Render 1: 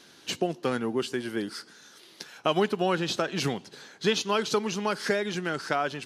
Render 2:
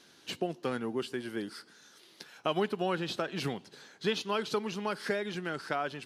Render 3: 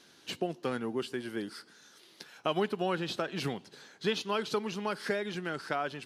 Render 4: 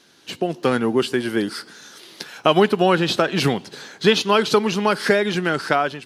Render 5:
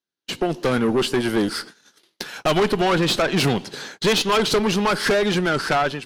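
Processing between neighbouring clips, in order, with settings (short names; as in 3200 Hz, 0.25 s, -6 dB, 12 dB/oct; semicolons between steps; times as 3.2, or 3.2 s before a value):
dynamic EQ 6400 Hz, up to -7 dB, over -52 dBFS, Q 2.1; gain -5.5 dB
nothing audible
AGC gain up to 10.5 dB; gain +4.5 dB
tube stage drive 20 dB, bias 0.45; gate -41 dBFS, range -40 dB; gain +5.5 dB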